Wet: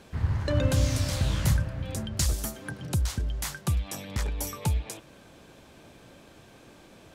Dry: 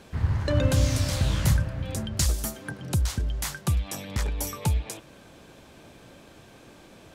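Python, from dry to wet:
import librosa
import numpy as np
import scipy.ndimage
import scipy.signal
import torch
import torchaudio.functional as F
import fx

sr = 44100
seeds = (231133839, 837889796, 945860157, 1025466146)

y = fx.band_squash(x, sr, depth_pct=40, at=(2.32, 2.87))
y = y * 10.0 ** (-2.0 / 20.0)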